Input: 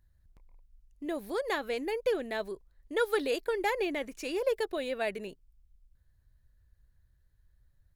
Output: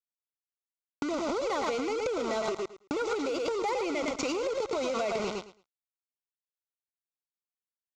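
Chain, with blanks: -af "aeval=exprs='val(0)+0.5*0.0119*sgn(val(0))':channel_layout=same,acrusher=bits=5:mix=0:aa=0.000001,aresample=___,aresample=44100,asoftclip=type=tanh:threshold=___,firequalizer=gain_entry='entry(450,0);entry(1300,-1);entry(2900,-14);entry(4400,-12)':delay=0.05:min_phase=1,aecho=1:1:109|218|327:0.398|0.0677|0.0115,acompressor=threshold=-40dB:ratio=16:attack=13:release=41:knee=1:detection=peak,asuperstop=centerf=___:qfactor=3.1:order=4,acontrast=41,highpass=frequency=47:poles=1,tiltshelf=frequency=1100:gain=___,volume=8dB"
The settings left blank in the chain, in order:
16000, -24dB, 1700, -6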